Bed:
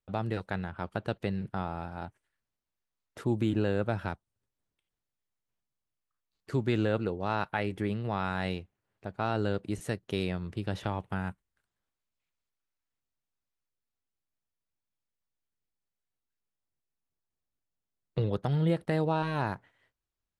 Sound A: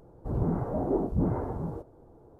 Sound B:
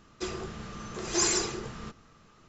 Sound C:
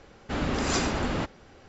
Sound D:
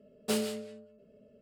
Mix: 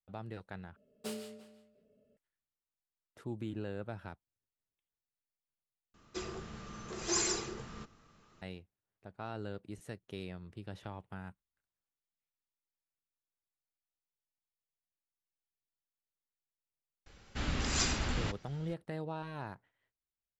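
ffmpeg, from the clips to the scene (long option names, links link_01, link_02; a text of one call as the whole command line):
ffmpeg -i bed.wav -i cue0.wav -i cue1.wav -i cue2.wav -i cue3.wav -filter_complex "[0:a]volume=-12dB[link_01];[4:a]asplit=2[link_02][link_03];[link_03]adelay=344,volume=-17dB,highshelf=frequency=4000:gain=-7.74[link_04];[link_02][link_04]amix=inputs=2:normalize=0[link_05];[3:a]equalizer=frequency=480:width=0.33:gain=-12[link_06];[link_01]asplit=3[link_07][link_08][link_09];[link_07]atrim=end=0.764[link_10];[link_05]atrim=end=1.41,asetpts=PTS-STARTPTS,volume=-11dB[link_11];[link_08]atrim=start=2.166:end=5.944[link_12];[2:a]atrim=end=2.48,asetpts=PTS-STARTPTS,volume=-6dB[link_13];[link_09]atrim=start=8.416[link_14];[link_06]atrim=end=1.68,asetpts=PTS-STARTPTS,volume=-0.5dB,afade=type=in:duration=0.004:curve=hsin,afade=type=out:start_time=1.676:duration=0.004:curve=hsin,adelay=17060[link_15];[link_10][link_11]acrossfade=duration=0.004:curve1=hsin:curve2=hsin[link_16];[link_16][link_12]acrossfade=duration=0.004:curve1=hsin:curve2=hsin[link_17];[link_17][link_13]acrossfade=duration=0.004:curve1=hsin:curve2=hsin[link_18];[link_18][link_14]acrossfade=duration=0.004:curve1=hsin:curve2=hsin[link_19];[link_19][link_15]amix=inputs=2:normalize=0" out.wav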